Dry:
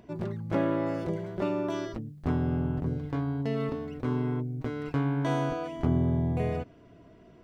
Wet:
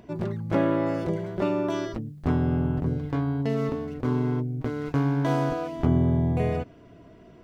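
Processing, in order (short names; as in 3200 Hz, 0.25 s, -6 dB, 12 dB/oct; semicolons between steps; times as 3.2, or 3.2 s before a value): 3.49–5.84 median filter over 15 samples; gain +4 dB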